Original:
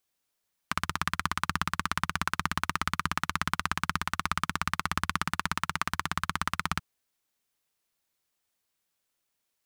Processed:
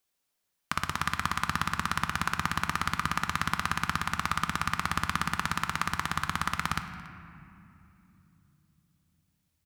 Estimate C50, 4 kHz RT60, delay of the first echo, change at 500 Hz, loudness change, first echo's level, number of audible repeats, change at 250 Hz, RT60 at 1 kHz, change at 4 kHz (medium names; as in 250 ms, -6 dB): 9.0 dB, 1.6 s, 282 ms, 0.0 dB, +1.0 dB, -23.0 dB, 1, +1.0 dB, 2.6 s, +0.5 dB